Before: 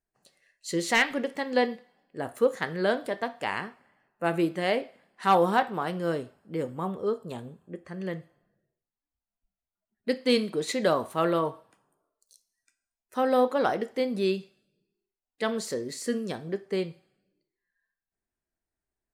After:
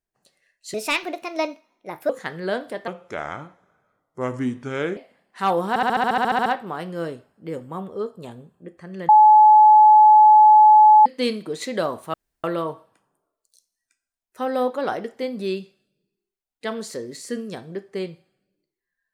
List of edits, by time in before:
0.74–2.46 s: speed 127%
3.24–4.81 s: speed 75%
5.53 s: stutter 0.07 s, 12 plays
8.16–10.13 s: bleep 855 Hz -7.5 dBFS
11.21 s: insert room tone 0.30 s

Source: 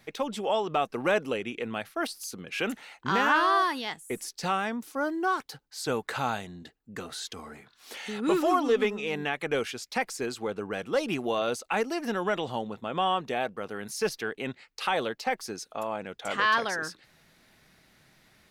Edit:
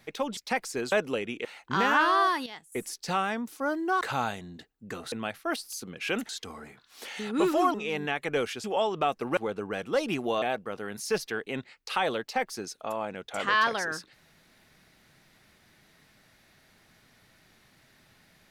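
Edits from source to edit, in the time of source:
0.37–1.10 s: swap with 9.82–10.37 s
1.63–2.80 s: move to 7.18 s
3.81–4.07 s: gain -9 dB
5.36–6.07 s: delete
8.63–8.92 s: delete
11.42–13.33 s: delete

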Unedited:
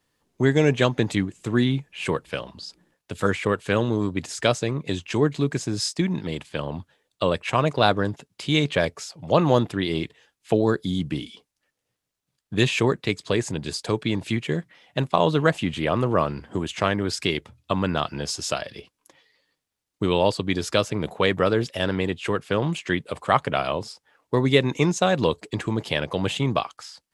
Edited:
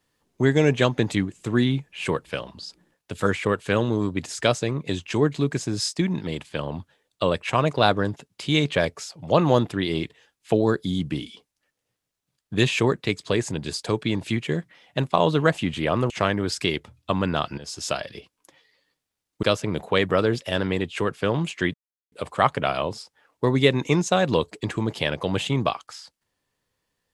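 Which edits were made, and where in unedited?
16.10–16.71 s: delete
18.19–18.53 s: fade in, from -14 dB
20.04–20.71 s: delete
23.02 s: insert silence 0.38 s

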